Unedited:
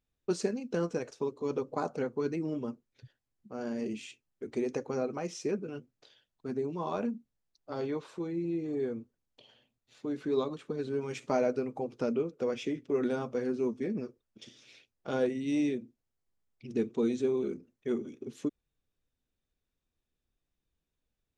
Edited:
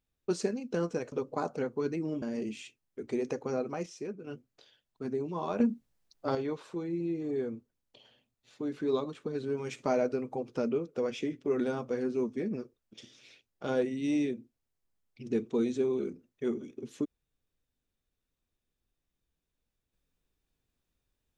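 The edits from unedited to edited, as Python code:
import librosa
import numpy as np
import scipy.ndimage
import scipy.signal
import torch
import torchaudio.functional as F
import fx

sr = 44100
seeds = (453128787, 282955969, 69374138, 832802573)

y = fx.edit(x, sr, fx.cut(start_s=1.12, length_s=0.4),
    fx.cut(start_s=2.62, length_s=1.04),
    fx.clip_gain(start_s=5.3, length_s=0.41, db=-6.5),
    fx.clip_gain(start_s=7.04, length_s=0.75, db=7.5), tone=tone)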